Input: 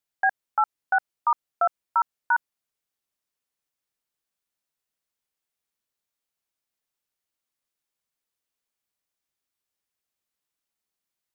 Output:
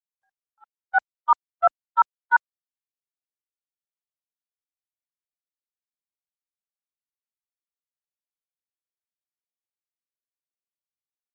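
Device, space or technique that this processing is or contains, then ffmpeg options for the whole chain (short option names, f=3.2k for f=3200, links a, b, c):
video call: -af "highpass=f=170:p=1,dynaudnorm=f=140:g=9:m=15dB,agate=range=-54dB:threshold=-7dB:ratio=16:detection=peak" -ar 48000 -c:a libopus -b:a 32k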